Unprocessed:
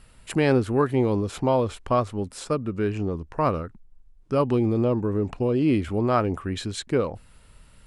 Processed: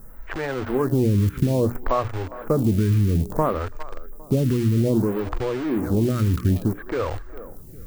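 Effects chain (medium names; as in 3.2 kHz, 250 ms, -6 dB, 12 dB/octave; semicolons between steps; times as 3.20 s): Chebyshev low-pass 1.8 kHz, order 3; bass shelf 200 Hz +11 dB; hum notches 60/120/180/240/300 Hz; peak limiter -16.5 dBFS, peak gain reduction 11 dB; on a send: thinning echo 404 ms, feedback 53%, high-pass 190 Hz, level -18 dB; on the sum: compression 6:1, threshold -24 dBFS, peak gain reduction 5 dB; added noise violet -59 dBFS; in parallel at -9.5 dB: bit crusher 5-bit; on the sum: lamp-driven phase shifter 0.6 Hz; trim +7.5 dB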